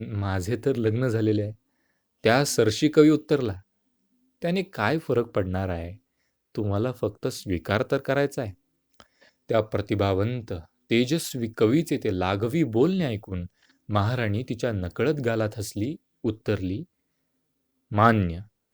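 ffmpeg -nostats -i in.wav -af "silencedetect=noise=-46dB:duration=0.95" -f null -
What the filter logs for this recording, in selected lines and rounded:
silence_start: 16.84
silence_end: 17.91 | silence_duration: 1.07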